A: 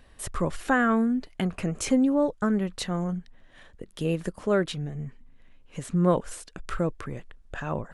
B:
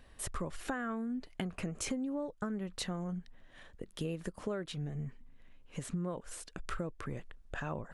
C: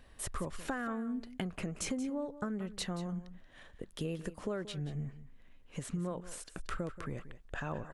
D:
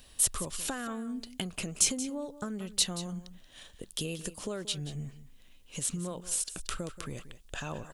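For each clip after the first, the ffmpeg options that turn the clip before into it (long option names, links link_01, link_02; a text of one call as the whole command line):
ffmpeg -i in.wav -af "acompressor=threshold=-30dB:ratio=10,volume=-3.5dB" out.wav
ffmpeg -i in.wav -af "aecho=1:1:180:0.188" out.wav
ffmpeg -i in.wav -af "aexciter=amount=3:drive=8.1:freq=2700" out.wav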